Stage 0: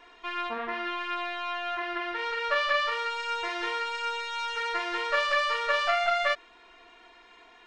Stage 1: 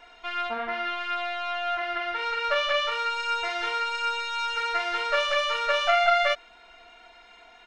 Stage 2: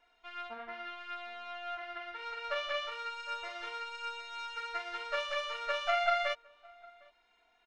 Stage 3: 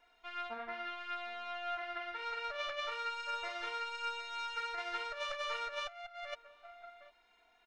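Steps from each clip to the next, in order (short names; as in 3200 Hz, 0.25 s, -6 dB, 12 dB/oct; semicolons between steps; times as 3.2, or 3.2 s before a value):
comb 1.4 ms, depth 55%; gain +1.5 dB
outdoor echo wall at 130 m, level -16 dB; upward expander 1.5:1, over -40 dBFS; gain -7.5 dB
notch 3000 Hz, Q 21; negative-ratio compressor -37 dBFS, ratio -0.5; gain -1 dB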